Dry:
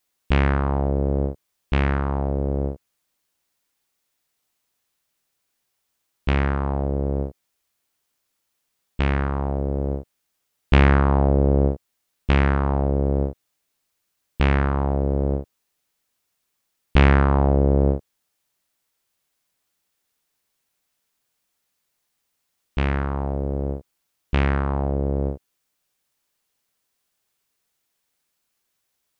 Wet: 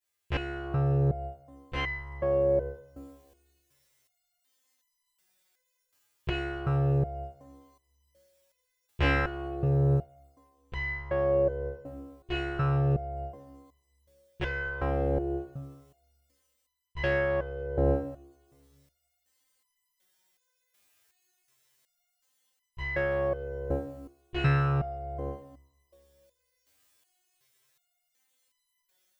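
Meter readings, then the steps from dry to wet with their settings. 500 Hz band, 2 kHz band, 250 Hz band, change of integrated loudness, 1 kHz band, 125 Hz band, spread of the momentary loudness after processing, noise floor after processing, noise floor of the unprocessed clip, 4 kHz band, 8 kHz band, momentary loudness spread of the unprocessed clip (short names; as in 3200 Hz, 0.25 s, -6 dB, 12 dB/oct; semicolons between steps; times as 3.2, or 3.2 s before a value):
-3.5 dB, -4.0 dB, -10.5 dB, -7.5 dB, -9.0 dB, -7.5 dB, 17 LU, -79 dBFS, -76 dBFS, -5.5 dB, n/a, 12 LU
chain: bell 190 Hz -12 dB 0.45 oct; AGC gain up to 12 dB; two-slope reverb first 0.26 s, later 1.6 s, from -18 dB, DRR -9 dB; stepped resonator 2.7 Hz 94–1000 Hz; gain -5.5 dB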